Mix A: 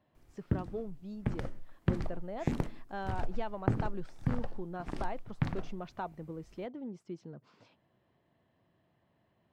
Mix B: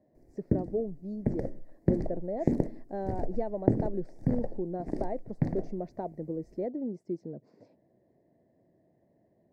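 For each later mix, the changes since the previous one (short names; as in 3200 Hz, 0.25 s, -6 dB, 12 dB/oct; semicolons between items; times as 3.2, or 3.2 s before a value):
master: add EQ curve 100 Hz 0 dB, 310 Hz +9 dB, 630 Hz +8 dB, 1300 Hz -19 dB, 1900 Hz -3 dB, 3100 Hz -26 dB, 4600 Hz -6 dB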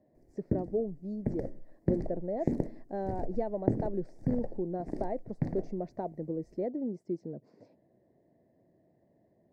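background -3.5 dB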